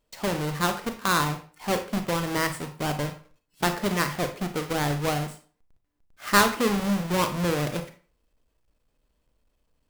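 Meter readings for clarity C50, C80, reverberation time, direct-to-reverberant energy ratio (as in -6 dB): 11.0 dB, 15.5 dB, 0.40 s, 7.0 dB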